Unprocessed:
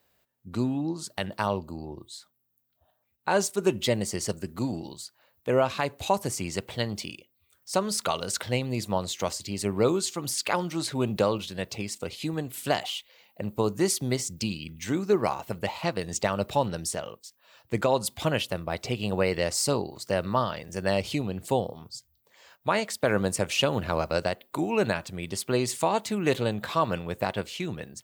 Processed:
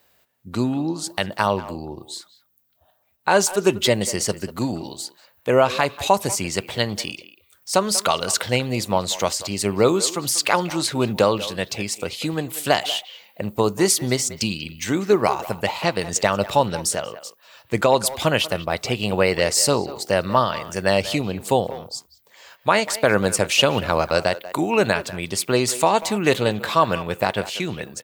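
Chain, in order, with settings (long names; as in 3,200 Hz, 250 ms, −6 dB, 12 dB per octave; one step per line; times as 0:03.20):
low-shelf EQ 460 Hz −5 dB
far-end echo of a speakerphone 190 ms, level −14 dB
level +9 dB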